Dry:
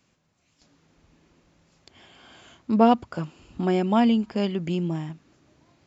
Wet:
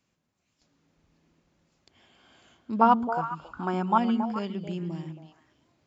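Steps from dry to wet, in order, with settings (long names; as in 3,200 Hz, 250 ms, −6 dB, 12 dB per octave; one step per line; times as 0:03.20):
0:02.81–0:03.98: flat-topped bell 1,100 Hz +14.5 dB 1.1 octaves
on a send: echo through a band-pass that steps 137 ms, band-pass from 220 Hz, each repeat 1.4 octaves, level −2.5 dB
on the sum: level −8.5 dB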